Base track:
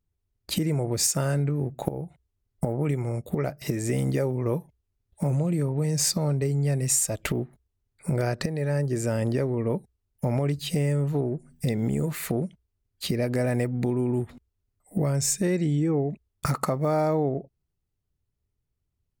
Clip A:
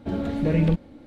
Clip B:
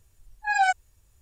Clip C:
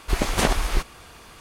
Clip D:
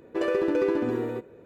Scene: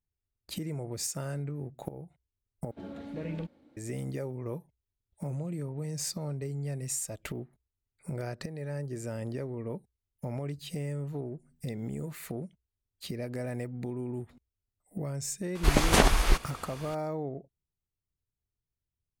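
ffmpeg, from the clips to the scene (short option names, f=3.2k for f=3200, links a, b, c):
-filter_complex "[0:a]volume=-10.5dB[a];[1:a]highpass=f=190:p=1[b];[a]asplit=2[c][d];[c]atrim=end=2.714[e];[b]atrim=end=1.06,asetpts=PTS-STARTPTS,volume=-13dB[f];[d]atrim=start=3.766[g];[3:a]atrim=end=1.4,asetpts=PTS-STARTPTS,volume=-0.5dB,afade=t=in:d=0.004:c=hsin,afade=t=out:st=1.396:d=0.004:c=hsin,adelay=15550[h];[e][f]acrossfade=d=0.004:c1=hsin:c2=hsin[i];[i][g]acrossfade=d=0.004:c1=hsin:c2=hsin[j];[j][h]amix=inputs=2:normalize=0"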